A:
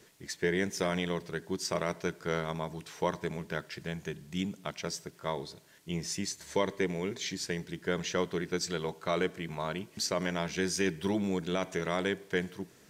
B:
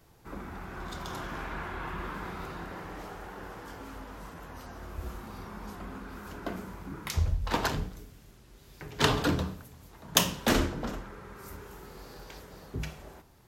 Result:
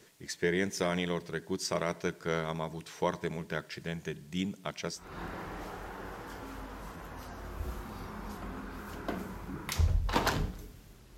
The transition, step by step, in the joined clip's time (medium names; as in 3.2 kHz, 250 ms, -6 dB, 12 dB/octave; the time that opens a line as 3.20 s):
A
5.04 s: go over to B from 2.42 s, crossfade 0.34 s quadratic